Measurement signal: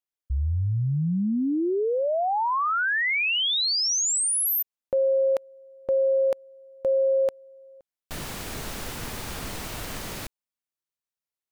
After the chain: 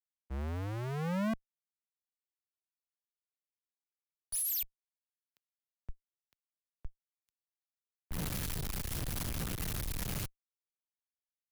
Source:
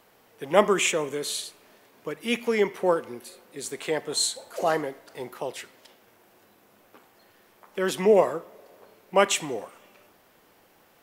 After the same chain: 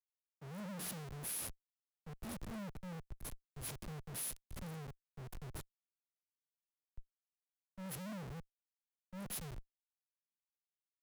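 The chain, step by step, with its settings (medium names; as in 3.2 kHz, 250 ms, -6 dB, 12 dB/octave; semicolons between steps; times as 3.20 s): brick-wall FIR band-stop 200–9700 Hz; in parallel at -3 dB: compression 6:1, threshold -36 dBFS; on the sum: Schmitt trigger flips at -42.5 dBFS; three bands expanded up and down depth 100%; trim -4 dB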